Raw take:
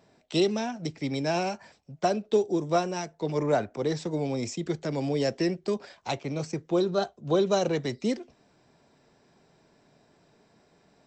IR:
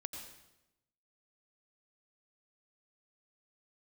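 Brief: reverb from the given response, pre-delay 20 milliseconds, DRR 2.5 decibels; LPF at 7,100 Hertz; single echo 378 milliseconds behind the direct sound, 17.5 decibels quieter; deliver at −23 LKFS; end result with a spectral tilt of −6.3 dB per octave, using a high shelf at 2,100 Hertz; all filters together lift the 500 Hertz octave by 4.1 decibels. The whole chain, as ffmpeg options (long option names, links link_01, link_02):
-filter_complex "[0:a]lowpass=7100,equalizer=frequency=500:width_type=o:gain=5.5,highshelf=frequency=2100:gain=-4,aecho=1:1:378:0.133,asplit=2[link_01][link_02];[1:a]atrim=start_sample=2205,adelay=20[link_03];[link_02][link_03]afir=irnorm=-1:irlink=0,volume=-0.5dB[link_04];[link_01][link_04]amix=inputs=2:normalize=0,volume=0.5dB"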